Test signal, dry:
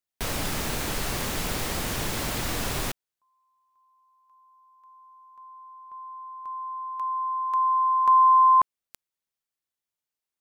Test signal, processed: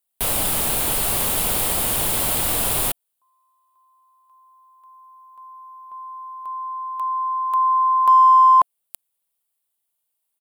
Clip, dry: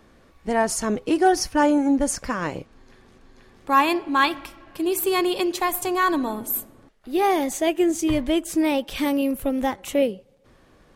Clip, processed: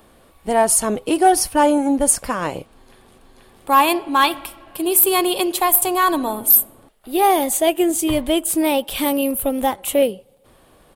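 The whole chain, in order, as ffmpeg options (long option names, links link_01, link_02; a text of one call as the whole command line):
ffmpeg -i in.wav -filter_complex "[0:a]firequalizer=gain_entry='entry(270,0);entry(700,6);entry(1800,-1);entry(3100,6);entry(6000,-1);entry(9100,14)':delay=0.05:min_phase=1,asplit=2[link_01][link_02];[link_02]asoftclip=type=hard:threshold=-10dB,volume=-4.5dB[link_03];[link_01][link_03]amix=inputs=2:normalize=0,volume=-3dB" out.wav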